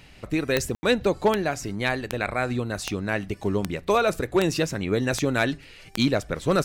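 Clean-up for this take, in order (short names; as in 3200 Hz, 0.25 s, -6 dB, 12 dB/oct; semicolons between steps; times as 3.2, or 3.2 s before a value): clip repair -11.5 dBFS; de-click; room tone fill 0.75–0.83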